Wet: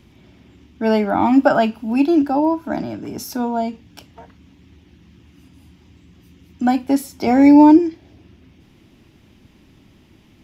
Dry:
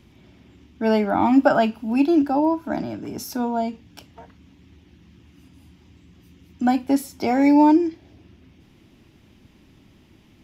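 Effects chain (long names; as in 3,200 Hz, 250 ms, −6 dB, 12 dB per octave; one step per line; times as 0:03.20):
0:07.27–0:07.79: low-shelf EQ 250 Hz +9.5 dB
level +2.5 dB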